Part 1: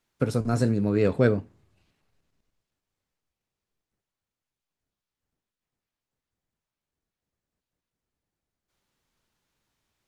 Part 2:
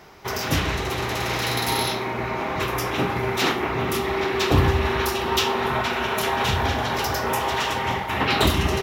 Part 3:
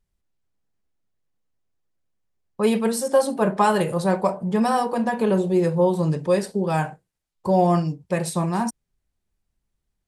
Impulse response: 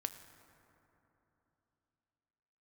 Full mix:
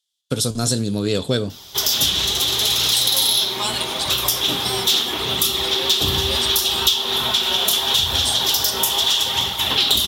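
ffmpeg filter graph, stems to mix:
-filter_complex "[0:a]agate=range=-33dB:threshold=-55dB:ratio=3:detection=peak,adelay=100,volume=2.5dB[link_01];[1:a]flanger=delay=0.7:depth=4.7:regen=69:speed=0.75:shape=sinusoidal,adelay=1500,volume=1.5dB[link_02];[2:a]bandpass=frequency=3000:width_type=q:width=0.73:csg=0,volume=-3.5dB[link_03];[link_01][link_02][link_03]amix=inputs=3:normalize=0,equalizer=frequency=3400:width_type=o:width=0.34:gain=12.5,aexciter=amount=5:drive=7.9:freq=3200,acompressor=threshold=-15dB:ratio=4"

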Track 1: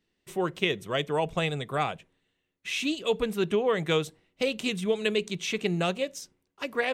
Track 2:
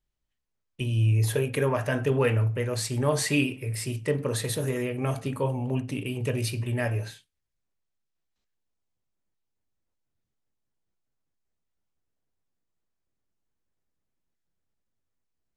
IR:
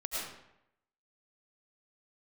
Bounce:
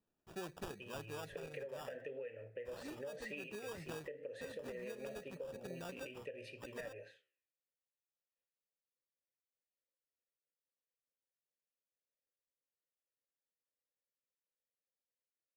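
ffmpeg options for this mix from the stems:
-filter_complex "[0:a]acrusher=samples=21:mix=1:aa=0.000001,volume=-11.5dB[link_01];[1:a]flanger=delay=9.7:depth=9.1:regen=-85:speed=0.86:shape=sinusoidal,asplit=3[link_02][link_03][link_04];[link_02]bandpass=frequency=530:width_type=q:width=8,volume=0dB[link_05];[link_03]bandpass=frequency=1840:width_type=q:width=8,volume=-6dB[link_06];[link_04]bandpass=frequency=2480:width_type=q:width=8,volume=-9dB[link_07];[link_05][link_06][link_07]amix=inputs=3:normalize=0,acompressor=threshold=-41dB:ratio=6,volume=1.5dB,asplit=2[link_08][link_09];[link_09]apad=whole_len=305994[link_10];[link_01][link_10]sidechaincompress=threshold=-48dB:ratio=8:attack=11:release=1290[link_11];[link_11][link_08]amix=inputs=2:normalize=0,acompressor=threshold=-42dB:ratio=6"

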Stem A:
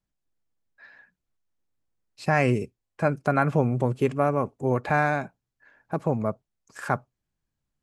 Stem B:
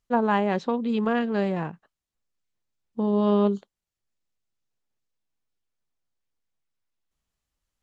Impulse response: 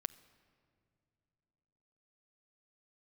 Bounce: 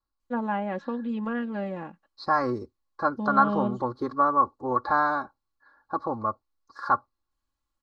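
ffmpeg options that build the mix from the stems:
-filter_complex "[0:a]firequalizer=gain_entry='entry(110,0);entry(170,-9);entry(380,4);entry(570,-4);entry(1100,14);entry(2700,-29);entry(4100,9);entry(7500,-22)':delay=0.05:min_phase=1,volume=-5dB[link_01];[1:a]acrossover=split=2600[link_02][link_03];[link_03]acompressor=threshold=-55dB:ratio=4:attack=1:release=60[link_04];[link_02][link_04]amix=inputs=2:normalize=0,adelay=200,volume=-7dB[link_05];[link_01][link_05]amix=inputs=2:normalize=0,aecho=1:1:3.6:0.62"

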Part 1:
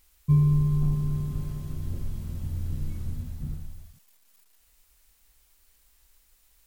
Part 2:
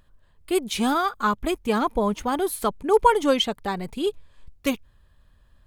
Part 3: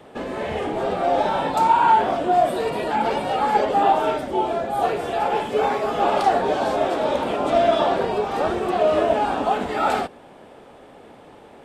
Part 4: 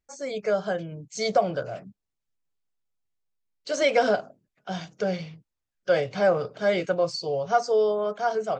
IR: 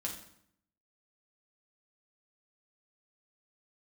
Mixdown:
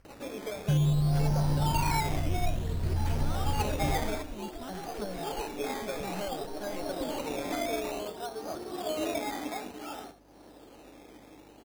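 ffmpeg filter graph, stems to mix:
-filter_complex "[0:a]alimiter=limit=-22dB:level=0:latency=1,adelay=400,volume=2dB[link_01];[1:a]asubboost=boost=12:cutoff=160,acompressor=threshold=-21dB:ratio=6,acrusher=bits=5:mix=0:aa=0.000001,adelay=2350,volume=-17.5dB[link_02];[2:a]equalizer=frequency=300:width_type=o:width=0.35:gain=11,tremolo=f=0.55:d=0.56,adelay=50,volume=-15dB,asplit=2[link_03][link_04];[link_04]volume=-13dB[link_05];[3:a]acompressor=threshold=-26dB:ratio=6,volume=-9.5dB[link_06];[link_05]aecho=0:1:73:1[link_07];[link_01][link_02][link_03][link_06][link_07]amix=inputs=5:normalize=0,acompressor=mode=upward:threshold=-43dB:ratio=2.5,acrusher=samples=12:mix=1:aa=0.000001:lfo=1:lforange=7.2:lforate=0.56,aeval=exprs='val(0)+0.000631*(sin(2*PI*50*n/s)+sin(2*PI*2*50*n/s)/2+sin(2*PI*3*50*n/s)/3+sin(2*PI*4*50*n/s)/4+sin(2*PI*5*50*n/s)/5)':channel_layout=same"

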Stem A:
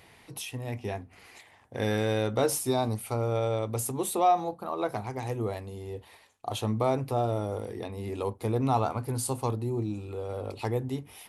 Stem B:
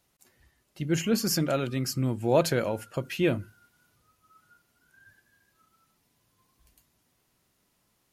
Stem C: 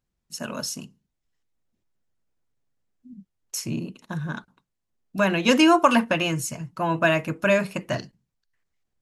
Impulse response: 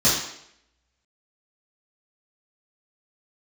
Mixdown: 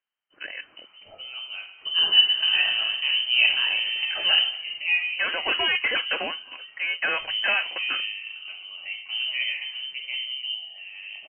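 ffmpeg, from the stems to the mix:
-filter_complex "[0:a]lowshelf=frequency=150:gain=-7.5,adelay=650,volume=-6.5dB,asplit=2[link_01][link_02];[link_02]volume=-15.5dB[link_03];[1:a]dynaudnorm=framelen=200:gausssize=7:maxgain=13dB,adelay=1050,volume=-10.5dB,asplit=2[link_04][link_05];[link_05]volume=-18.5dB[link_06];[2:a]highpass=frequency=290:poles=1,equalizer=frequency=1700:width_type=o:width=1.8:gain=6,asoftclip=type=hard:threshold=-15.5dB,volume=-4.5dB[link_07];[3:a]atrim=start_sample=2205[link_08];[link_03][link_06]amix=inputs=2:normalize=0[link_09];[link_09][link_08]afir=irnorm=-1:irlink=0[link_10];[link_01][link_04][link_07][link_10]amix=inputs=4:normalize=0,lowpass=frequency=2700:width_type=q:width=0.5098,lowpass=frequency=2700:width_type=q:width=0.6013,lowpass=frequency=2700:width_type=q:width=0.9,lowpass=frequency=2700:width_type=q:width=2.563,afreqshift=-3200"

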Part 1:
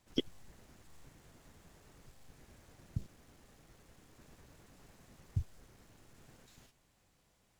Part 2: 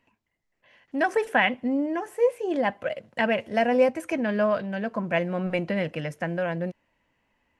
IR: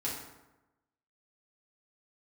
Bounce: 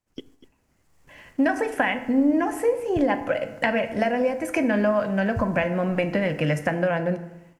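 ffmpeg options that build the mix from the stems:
-filter_complex "[0:a]volume=-5.5dB,asplit=3[link_01][link_02][link_03];[link_02]volume=-22dB[link_04];[link_03]volume=-15.5dB[link_05];[1:a]acompressor=threshold=-30dB:ratio=10,bandreject=frequency=430:width=12,adelay=450,volume=-0.5dB,asplit=2[link_06][link_07];[link_07]volume=-9dB[link_08];[2:a]atrim=start_sample=2205[link_09];[link_04][link_08]amix=inputs=2:normalize=0[link_10];[link_10][link_09]afir=irnorm=-1:irlink=0[link_11];[link_05]aecho=0:1:243:1[link_12];[link_01][link_06][link_11][link_12]amix=inputs=4:normalize=0,dynaudnorm=framelen=540:gausssize=3:maxgain=9.5dB,agate=range=-7dB:threshold=-50dB:ratio=16:detection=peak,equalizer=frequency=3700:width=3.3:gain=-6"

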